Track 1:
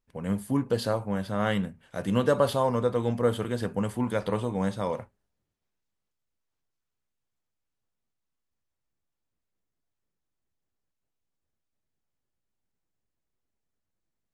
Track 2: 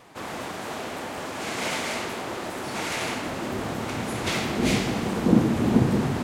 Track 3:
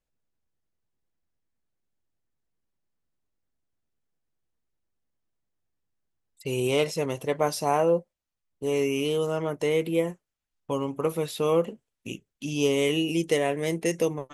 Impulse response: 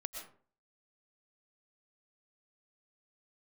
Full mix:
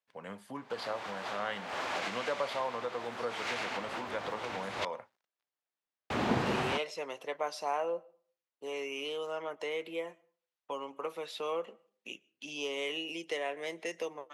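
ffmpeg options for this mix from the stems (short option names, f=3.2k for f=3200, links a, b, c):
-filter_complex "[0:a]acrusher=bits=11:mix=0:aa=0.000001,volume=-1.5dB,asplit=2[a][b];[1:a]adelay=550,volume=0.5dB,asplit=3[c][d][e];[c]atrim=end=4.85,asetpts=PTS-STARTPTS,afade=t=out:st=4.846:d=0.004:c=hsin[f];[d]atrim=start=4.85:end=6.1,asetpts=PTS-STARTPTS,volume=0[g];[e]atrim=start=6.1,asetpts=PTS-STARTPTS,afade=t=in:d=0.004:c=hsin[h];[f][g][h]concat=n=3:v=0:a=1[i];[2:a]highpass=190,volume=-2.5dB,asplit=2[j][k];[k]volume=-22dB[l];[b]apad=whole_len=299338[m];[i][m]sidechaincompress=threshold=-34dB:ratio=10:attack=29:release=226[n];[a][j]amix=inputs=2:normalize=0,highpass=170,acompressor=threshold=-35dB:ratio=1.5,volume=0dB[o];[3:a]atrim=start_sample=2205[p];[l][p]afir=irnorm=-1:irlink=0[q];[n][o][q]amix=inputs=3:normalize=0,acrossover=split=540 5500:gain=0.2 1 0.158[r][s][t];[r][s][t]amix=inputs=3:normalize=0"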